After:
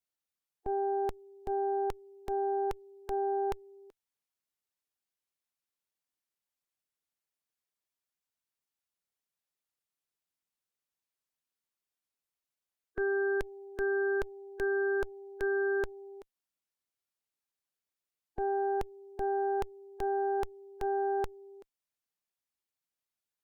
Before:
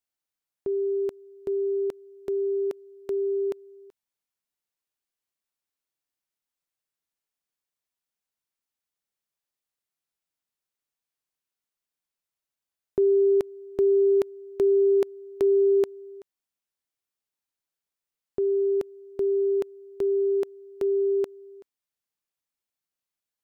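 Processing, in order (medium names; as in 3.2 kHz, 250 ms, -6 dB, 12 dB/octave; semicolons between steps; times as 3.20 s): Chebyshev shaper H 3 -26 dB, 4 -7 dB, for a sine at -16 dBFS; harmonic-percussive split harmonic -4 dB; peak limiter -25 dBFS, peak gain reduction 11 dB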